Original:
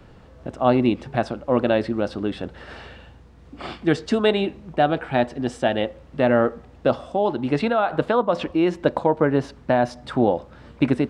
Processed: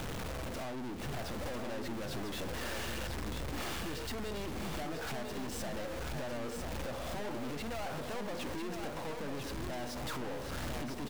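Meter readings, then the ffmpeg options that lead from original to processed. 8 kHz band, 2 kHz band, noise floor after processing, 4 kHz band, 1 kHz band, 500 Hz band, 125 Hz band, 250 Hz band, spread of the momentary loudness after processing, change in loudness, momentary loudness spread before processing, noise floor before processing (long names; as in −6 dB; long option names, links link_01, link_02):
can't be measured, −12.5 dB, −41 dBFS, −8.5 dB, −17.5 dB, −19.5 dB, −13.0 dB, −18.0 dB, 2 LU, −17.5 dB, 9 LU, −47 dBFS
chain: -af "aeval=exprs='val(0)+0.5*0.0266*sgn(val(0))':channel_layout=same,acompressor=threshold=-30dB:ratio=6,aeval=exprs='(tanh(141*val(0)+0.4)-tanh(0.4))/141':channel_layout=same,aecho=1:1:998:0.531,volume=3.5dB"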